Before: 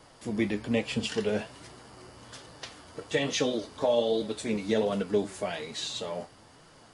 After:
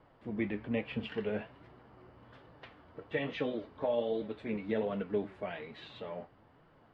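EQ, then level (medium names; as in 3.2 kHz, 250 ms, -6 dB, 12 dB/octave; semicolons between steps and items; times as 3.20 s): dynamic bell 2.3 kHz, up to +6 dB, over -47 dBFS, Q 1; distance through air 480 m; treble shelf 7.8 kHz -9.5 dB; -5.5 dB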